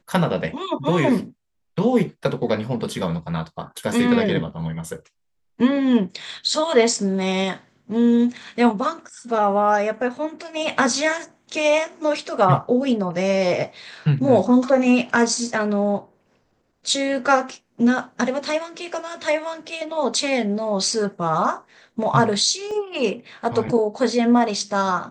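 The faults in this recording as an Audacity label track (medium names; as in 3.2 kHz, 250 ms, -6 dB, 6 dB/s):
22.710000	22.710000	dropout 2.9 ms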